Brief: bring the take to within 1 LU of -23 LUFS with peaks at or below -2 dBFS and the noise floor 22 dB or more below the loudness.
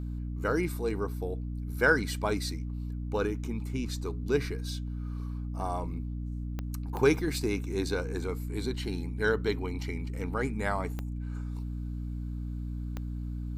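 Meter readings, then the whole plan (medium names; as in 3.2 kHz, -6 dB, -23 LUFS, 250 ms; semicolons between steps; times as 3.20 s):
clicks found 4; hum 60 Hz; highest harmonic 300 Hz; hum level -33 dBFS; loudness -32.5 LUFS; peak level -10.0 dBFS; loudness target -23.0 LUFS
-> de-click; de-hum 60 Hz, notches 5; trim +9.5 dB; peak limiter -2 dBFS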